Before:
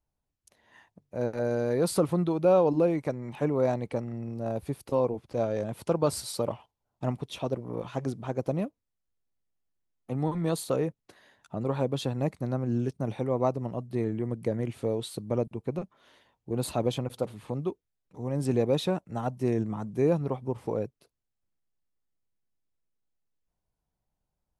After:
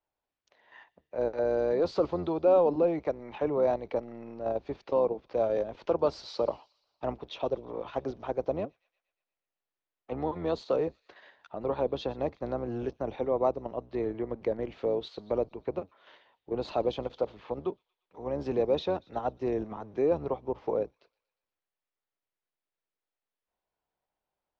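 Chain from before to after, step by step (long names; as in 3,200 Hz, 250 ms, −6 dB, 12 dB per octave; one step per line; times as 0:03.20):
sub-octave generator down 1 octave, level −3 dB
Butterworth low-pass 6,500 Hz 48 dB per octave
in parallel at +0.5 dB: output level in coarse steps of 15 dB
on the sum: three-way crossover with the lows and the highs turned down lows −19 dB, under 360 Hz, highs −23 dB, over 4,200 Hz
on a send: delay with a high-pass on its return 118 ms, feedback 57%, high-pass 3,500 Hz, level −19 dB
on the sum: dynamic equaliser 1,900 Hz, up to −8 dB, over −45 dBFS, Q 0.71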